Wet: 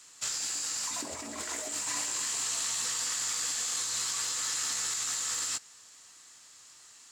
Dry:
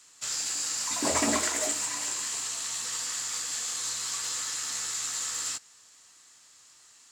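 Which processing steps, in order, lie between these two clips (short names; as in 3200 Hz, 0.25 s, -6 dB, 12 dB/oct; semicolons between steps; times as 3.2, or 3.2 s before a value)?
negative-ratio compressor -34 dBFS, ratio -1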